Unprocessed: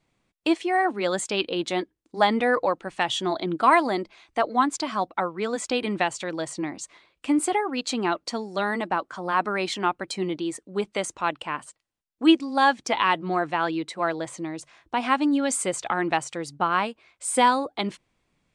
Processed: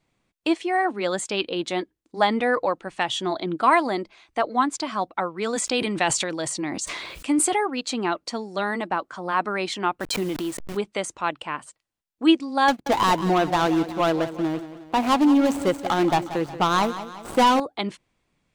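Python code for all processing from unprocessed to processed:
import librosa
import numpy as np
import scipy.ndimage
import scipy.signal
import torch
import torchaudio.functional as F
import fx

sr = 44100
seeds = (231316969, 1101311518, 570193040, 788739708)

y = fx.chain(x, sr, fx.high_shelf(hz=4400.0, db=7.5),
    fx.sustainer(db_per_s=35.0), at=(5.36, 7.67))
y = fx.chain(y, sr, fx.delta_hold(step_db=-38.0),
    fx.pre_swell(db_per_s=21.0), at=(10.0, 10.77))
y = fx.chain(y, sr, fx.median_filter(points=25),
    fx.leveller(passes=2),
    fx.echo_feedback(ms=181, feedback_pct=49, wet_db=-13), at=(12.68, 17.6))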